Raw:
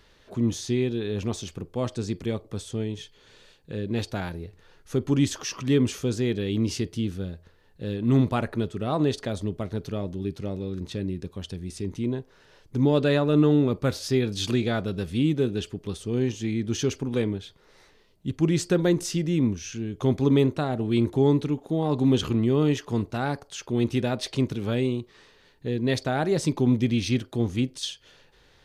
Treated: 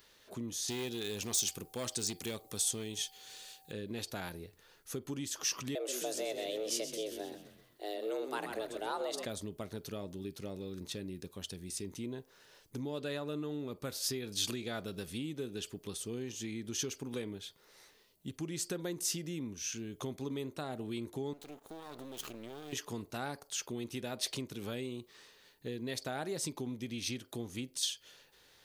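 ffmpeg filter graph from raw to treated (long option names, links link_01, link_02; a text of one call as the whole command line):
ffmpeg -i in.wav -filter_complex "[0:a]asettb=1/sr,asplit=3[link_01][link_02][link_03];[link_01]atrim=end=0.684[link_04];[link_02]atrim=start=0.68:end=3.72,asetpts=PTS-STARTPTS,afade=type=in:duration=0.004:curve=qsin,afade=type=out:start_time=3.036:duration=0.004:curve=qsin,highshelf=frequency=2800:gain=11,aeval=exprs='val(0)+0.00141*sin(2*PI*770*n/s)':channel_layout=same,asoftclip=type=hard:threshold=-22dB[link_05];[link_03]atrim=start=3.716[link_06];[link_04][link_05]acrossfade=duration=0.004:curve1=hsin:curve2=qsin[link_07];[link_07][link_06]acrossfade=duration=0.004:curve1=qsin:curve2=hsin,asettb=1/sr,asplit=3[link_08][link_09][link_10];[link_08]atrim=end=5.754[link_11];[link_09]atrim=start=5.75:end=9.25,asetpts=PTS-STARTPTS,afade=type=in:duration=0.004:curve=qsin,afade=type=out:start_time=3.496:duration=0.004:curve=qsin,highpass=frequency=200:poles=1,afreqshift=210,asplit=6[link_12][link_13][link_14][link_15][link_16][link_17];[link_13]adelay=129,afreqshift=-88,volume=-10dB[link_18];[link_14]adelay=258,afreqshift=-176,volume=-16.2dB[link_19];[link_15]adelay=387,afreqshift=-264,volume=-22.4dB[link_20];[link_16]adelay=516,afreqshift=-352,volume=-28.6dB[link_21];[link_17]adelay=645,afreqshift=-440,volume=-34.8dB[link_22];[link_12][link_18][link_19][link_20][link_21][link_22]amix=inputs=6:normalize=0,atrim=end_sample=154350[link_23];[link_10]atrim=start=9.246[link_24];[link_11][link_23]acrossfade=duration=0.004:curve1=hsin:curve2=qsin[link_25];[link_25][link_24]acrossfade=duration=0.004:curve1=qsin:curve2=hsin,asettb=1/sr,asplit=3[link_26][link_27][link_28];[link_26]atrim=end=21.334[link_29];[link_27]atrim=start=21.33:end=22.73,asetpts=PTS-STARTPTS,afade=type=in:duration=0.004:curve=qsin,afade=type=out:start_time=1.396:duration=0.004:curve=qsin,equalizer=frequency=100:width_type=o:width=2.4:gain=-9.5,acompressor=threshold=-30dB:ratio=12:attack=3.2:release=140:knee=1:detection=peak,aeval=exprs='max(val(0),0)':channel_layout=same[link_30];[link_28]atrim=start=22.726[link_31];[link_29][link_30]acrossfade=duration=0.004:curve1=hsin:curve2=qsin[link_32];[link_32][link_31]acrossfade=duration=0.004:curve1=qsin:curve2=hsin,lowshelf=frequency=190:gain=3.5,acompressor=threshold=-26dB:ratio=6,aemphasis=mode=production:type=bsi,volume=-6dB" out.wav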